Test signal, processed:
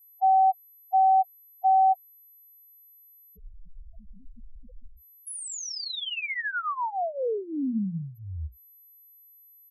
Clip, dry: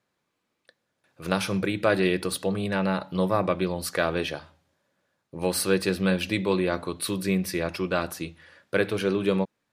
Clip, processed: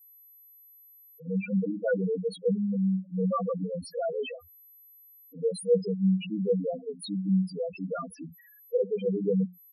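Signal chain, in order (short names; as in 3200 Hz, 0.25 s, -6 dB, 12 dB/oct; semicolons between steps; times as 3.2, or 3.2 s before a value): notches 60/120/180/240 Hz; comb 4.2 ms, depth 79%; whine 12000 Hz -52 dBFS; loudest bins only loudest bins 2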